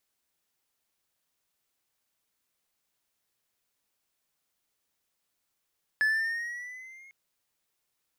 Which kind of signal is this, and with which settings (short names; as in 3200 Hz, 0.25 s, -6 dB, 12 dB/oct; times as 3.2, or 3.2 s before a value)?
gliding synth tone triangle, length 1.10 s, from 1720 Hz, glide +4 st, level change -29 dB, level -19 dB